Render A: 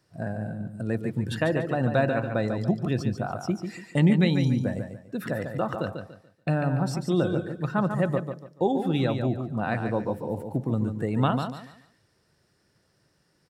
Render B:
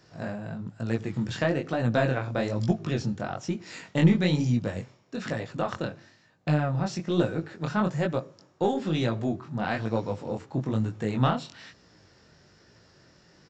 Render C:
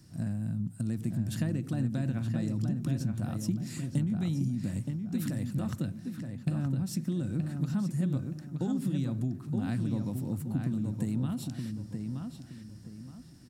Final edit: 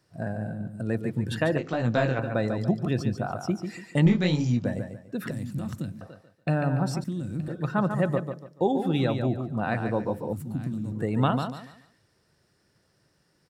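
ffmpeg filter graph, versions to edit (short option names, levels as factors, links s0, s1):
-filter_complex "[1:a]asplit=2[s0][s1];[2:a]asplit=3[s2][s3][s4];[0:a]asplit=6[s5][s6][s7][s8][s9][s10];[s5]atrim=end=1.582[s11];[s0]atrim=start=1.578:end=2.192[s12];[s6]atrim=start=2.188:end=4.062[s13];[s1]atrim=start=4.058:end=4.652[s14];[s7]atrim=start=4.648:end=5.312[s15];[s2]atrim=start=5.308:end=6.012[s16];[s8]atrim=start=6.008:end=7.042[s17];[s3]atrim=start=7.038:end=7.482[s18];[s9]atrim=start=7.478:end=10.332[s19];[s4]atrim=start=10.328:end=10.922[s20];[s10]atrim=start=10.918[s21];[s11][s12]acrossfade=d=0.004:c1=hsin:c2=hsin[s22];[s22][s13]acrossfade=d=0.004:c1=hsin:c2=hsin[s23];[s23][s14]acrossfade=d=0.004:c1=hsin:c2=hsin[s24];[s24][s15]acrossfade=d=0.004:c1=hsin:c2=hsin[s25];[s25][s16]acrossfade=d=0.004:c1=hsin:c2=hsin[s26];[s26][s17]acrossfade=d=0.004:c1=hsin:c2=hsin[s27];[s27][s18]acrossfade=d=0.004:c1=hsin:c2=hsin[s28];[s28][s19]acrossfade=d=0.004:c1=hsin:c2=hsin[s29];[s29][s20]acrossfade=d=0.004:c1=hsin:c2=hsin[s30];[s30][s21]acrossfade=d=0.004:c1=hsin:c2=hsin"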